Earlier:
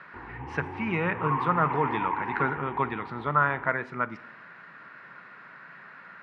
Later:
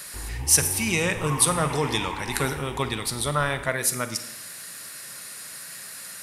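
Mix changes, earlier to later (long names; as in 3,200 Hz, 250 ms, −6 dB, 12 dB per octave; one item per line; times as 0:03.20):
speech: send +8.5 dB
master: remove loudspeaker in its box 150–2,100 Hz, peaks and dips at 170 Hz +3 dB, 560 Hz −4 dB, 960 Hz +6 dB, 1,400 Hz +6 dB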